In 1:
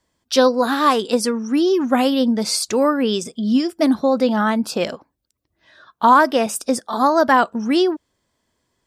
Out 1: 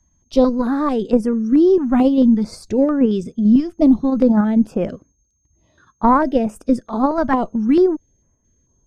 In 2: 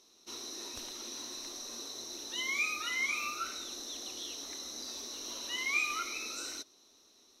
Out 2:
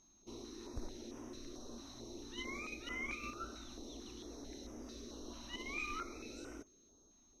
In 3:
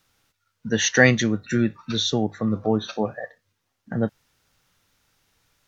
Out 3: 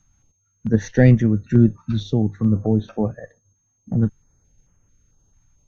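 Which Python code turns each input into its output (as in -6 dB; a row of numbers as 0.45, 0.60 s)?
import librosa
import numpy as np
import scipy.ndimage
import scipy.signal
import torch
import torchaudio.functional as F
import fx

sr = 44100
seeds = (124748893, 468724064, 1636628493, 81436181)

p1 = fx.cheby_harmonics(x, sr, harmonics=(2,), levels_db=(-20,), full_scale_db=-1.0)
p2 = p1 + 10.0 ** (-50.0 / 20.0) * np.sin(2.0 * np.pi * 6400.0 * np.arange(len(p1)) / sr)
p3 = fx.tilt_eq(p2, sr, slope=-4.5)
p4 = fx.level_steps(p3, sr, step_db=10)
p5 = p3 + (p4 * 10.0 ** (1.5 / 20.0))
p6 = fx.filter_held_notch(p5, sr, hz=4.5, low_hz=450.0, high_hz=4100.0)
y = p6 * 10.0 ** (-8.5 / 20.0)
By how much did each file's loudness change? +1.0, -10.5, +3.0 LU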